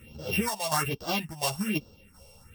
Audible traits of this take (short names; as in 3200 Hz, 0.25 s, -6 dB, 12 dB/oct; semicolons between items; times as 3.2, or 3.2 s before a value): a buzz of ramps at a fixed pitch in blocks of 16 samples; phasing stages 4, 1.2 Hz, lowest notch 270–2100 Hz; tremolo saw down 1.4 Hz, depth 55%; a shimmering, thickened sound